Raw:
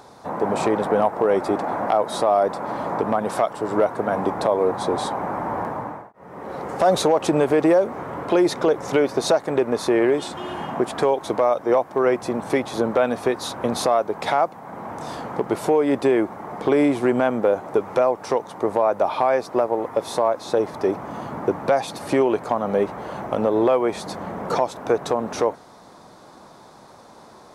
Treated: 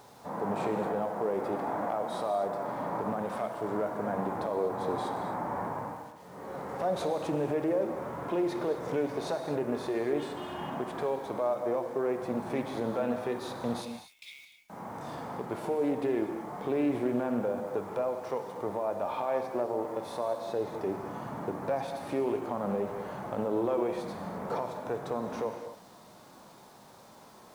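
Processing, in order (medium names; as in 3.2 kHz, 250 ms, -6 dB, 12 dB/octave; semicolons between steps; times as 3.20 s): 13.81–14.70 s: steep high-pass 2.2 kHz 96 dB/octave; dynamic bell 6.5 kHz, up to -6 dB, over -47 dBFS, Q 0.75; harmonic-percussive split percussive -9 dB; peak limiter -17 dBFS, peak gain reduction 8.5 dB; bit crusher 9-bit; gated-style reverb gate 280 ms flat, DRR 5.5 dB; loudspeaker Doppler distortion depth 0.15 ms; trim -5.5 dB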